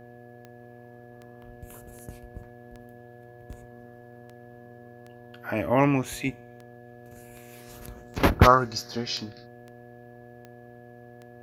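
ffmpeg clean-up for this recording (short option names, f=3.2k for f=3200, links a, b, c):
-af "adeclick=t=4,bandreject=f=120.4:t=h:w=4,bandreject=f=240.8:t=h:w=4,bandreject=f=361.2:t=h:w=4,bandreject=f=481.6:t=h:w=4,bandreject=f=602:t=h:w=4,bandreject=f=722.4:t=h:w=4,bandreject=f=1.7k:w=30"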